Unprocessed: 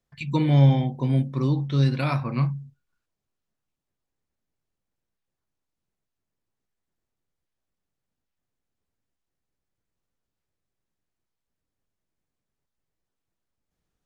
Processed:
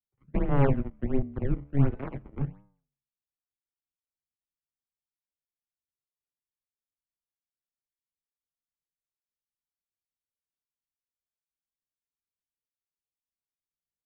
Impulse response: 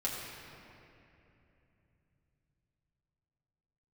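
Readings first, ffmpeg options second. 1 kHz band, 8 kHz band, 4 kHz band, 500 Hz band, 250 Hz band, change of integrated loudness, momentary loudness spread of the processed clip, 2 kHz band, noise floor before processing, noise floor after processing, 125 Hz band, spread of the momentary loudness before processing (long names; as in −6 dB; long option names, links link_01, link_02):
−5.5 dB, can't be measured, below −20 dB, −1.5 dB, −6.0 dB, −7.0 dB, 11 LU, −7.0 dB, −84 dBFS, below −85 dBFS, −8.5 dB, 9 LU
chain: -filter_complex "[0:a]tiltshelf=frequency=970:gain=8.5,aeval=exprs='1.06*(cos(1*acos(clip(val(0)/1.06,-1,1)))-cos(1*PI/2))+0.168*(cos(7*acos(clip(val(0)/1.06,-1,1)))-cos(7*PI/2))':channel_layout=same,flanger=delay=9.4:depth=5.1:regen=-88:speed=0.38:shape=triangular,acrossover=split=310|830[link_01][link_02][link_03];[link_03]acrusher=samples=26:mix=1:aa=0.000001:lfo=1:lforange=41.6:lforate=1.4[link_04];[link_01][link_02][link_04]amix=inputs=3:normalize=0,highpass=frequency=250:width_type=q:width=0.5412,highpass=frequency=250:width_type=q:width=1.307,lowpass=frequency=2700:width_type=q:width=0.5176,lowpass=frequency=2700:width_type=q:width=0.7071,lowpass=frequency=2700:width_type=q:width=1.932,afreqshift=-280,volume=2dB"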